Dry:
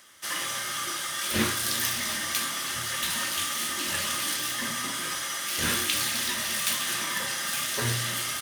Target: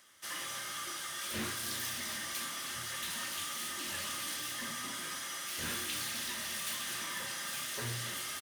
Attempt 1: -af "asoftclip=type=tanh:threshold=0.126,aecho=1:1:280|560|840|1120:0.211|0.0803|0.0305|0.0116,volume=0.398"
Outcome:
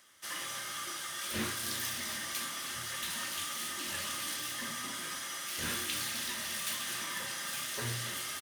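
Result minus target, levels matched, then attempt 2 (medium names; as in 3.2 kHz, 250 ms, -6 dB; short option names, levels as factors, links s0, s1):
saturation: distortion -7 dB
-af "asoftclip=type=tanh:threshold=0.0631,aecho=1:1:280|560|840|1120:0.211|0.0803|0.0305|0.0116,volume=0.398"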